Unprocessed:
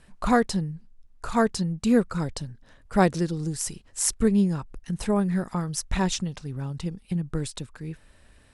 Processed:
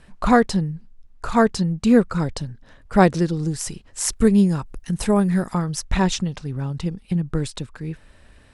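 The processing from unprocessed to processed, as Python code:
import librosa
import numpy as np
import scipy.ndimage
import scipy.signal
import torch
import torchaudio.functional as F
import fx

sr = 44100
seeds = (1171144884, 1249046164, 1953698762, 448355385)

y = fx.high_shelf(x, sr, hz=7700.0, db=fx.steps((0.0, -9.0), (4.13, 4.5), (5.57, -9.0)))
y = y * 10.0 ** (5.5 / 20.0)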